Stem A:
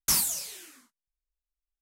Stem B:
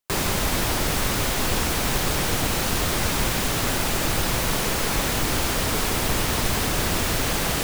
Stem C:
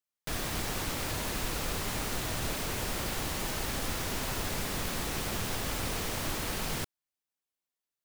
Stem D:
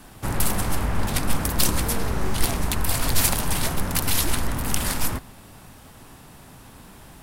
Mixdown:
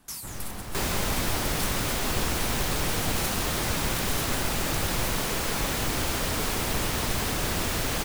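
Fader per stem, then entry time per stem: -13.5 dB, -4.5 dB, -9.5 dB, -14.0 dB; 0.00 s, 0.65 s, 0.00 s, 0.00 s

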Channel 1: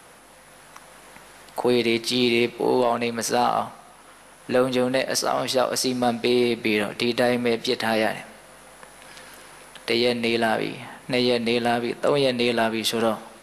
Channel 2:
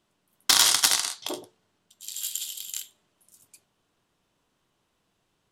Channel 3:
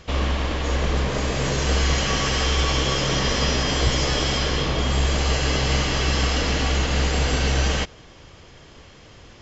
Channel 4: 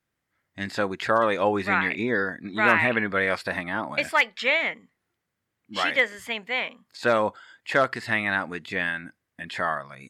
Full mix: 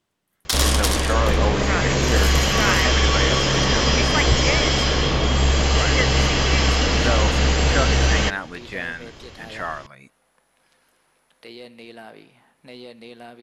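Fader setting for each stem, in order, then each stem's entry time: -19.0 dB, -3.5 dB, +3.0 dB, -2.5 dB; 1.55 s, 0.00 s, 0.45 s, 0.00 s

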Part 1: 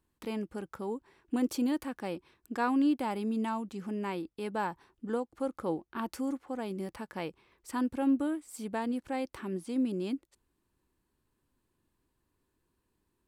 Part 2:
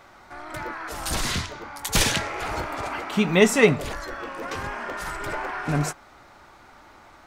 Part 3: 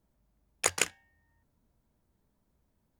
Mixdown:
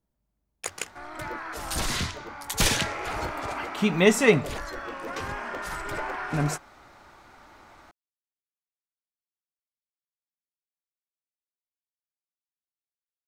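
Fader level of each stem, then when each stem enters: mute, -2.0 dB, -6.0 dB; mute, 0.65 s, 0.00 s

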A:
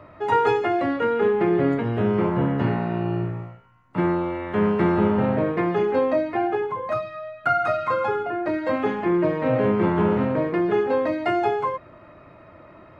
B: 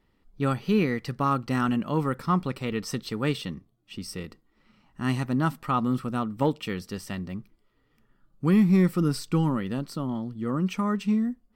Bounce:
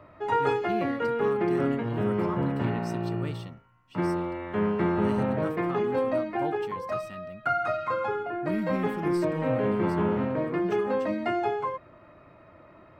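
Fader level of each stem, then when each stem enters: -5.5 dB, -12.0 dB; 0.00 s, 0.00 s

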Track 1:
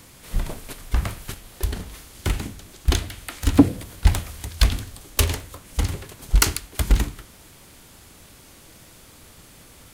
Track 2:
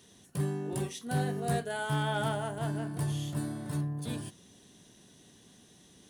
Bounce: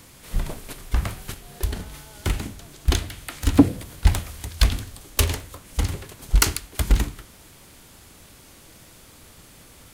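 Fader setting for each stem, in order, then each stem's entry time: -0.5 dB, -18.5 dB; 0.00 s, 0.00 s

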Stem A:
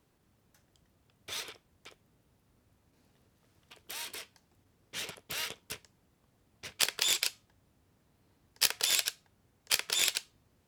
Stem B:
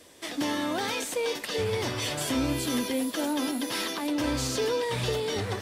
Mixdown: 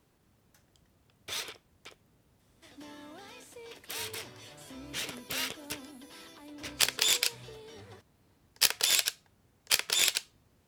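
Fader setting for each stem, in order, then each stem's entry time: +2.5 dB, -19.5 dB; 0.00 s, 2.40 s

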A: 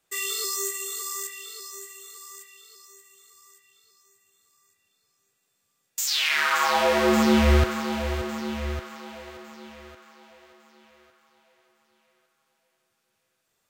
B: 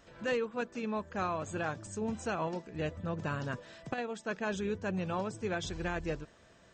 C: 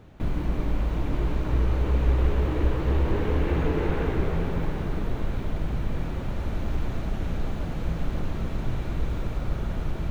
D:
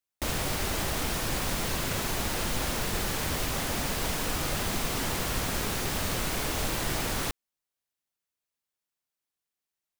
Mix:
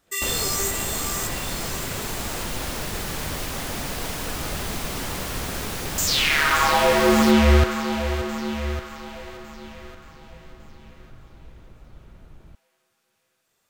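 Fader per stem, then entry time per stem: +3.0 dB, -9.5 dB, -18.5 dB, +0.5 dB; 0.00 s, 0.00 s, 2.45 s, 0.00 s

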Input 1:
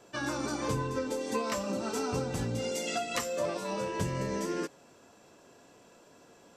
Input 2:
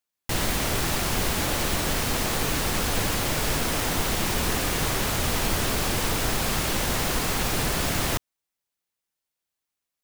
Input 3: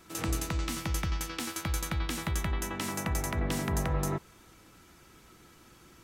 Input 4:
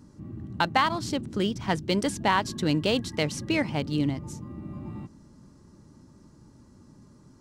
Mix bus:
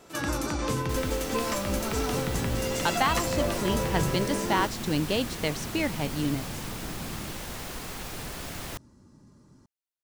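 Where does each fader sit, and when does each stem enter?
+2.0 dB, -12.0 dB, -2.0 dB, -2.5 dB; 0.00 s, 0.60 s, 0.00 s, 2.25 s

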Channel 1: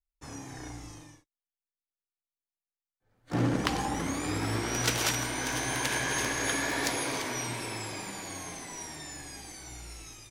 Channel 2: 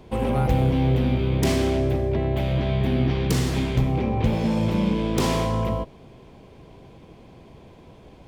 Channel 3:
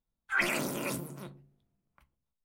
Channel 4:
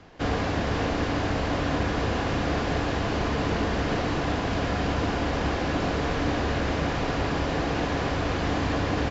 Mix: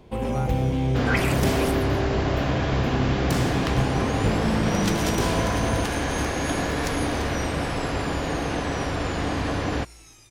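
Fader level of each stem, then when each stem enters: -3.0 dB, -3.0 dB, +2.0 dB, 0.0 dB; 0.00 s, 0.00 s, 0.75 s, 0.75 s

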